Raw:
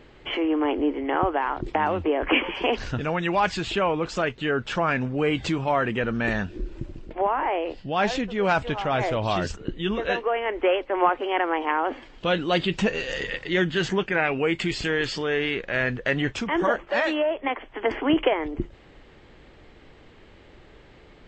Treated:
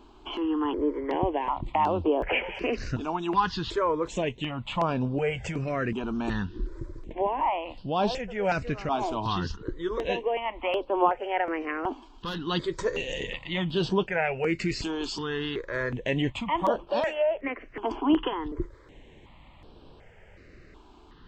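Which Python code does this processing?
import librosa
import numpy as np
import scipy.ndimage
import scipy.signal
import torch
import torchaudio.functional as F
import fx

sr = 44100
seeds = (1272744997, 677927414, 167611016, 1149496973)

y = fx.peak_eq(x, sr, hz=990.0, db=7.5, octaves=0.21)
y = fx.tube_stage(y, sr, drive_db=22.0, bias=0.5, at=(11.93, 12.47))
y = fx.dynamic_eq(y, sr, hz=1600.0, q=1.3, threshold_db=-38.0, ratio=4.0, max_db=-5)
y = fx.phaser_held(y, sr, hz=2.7, low_hz=520.0, high_hz=6900.0)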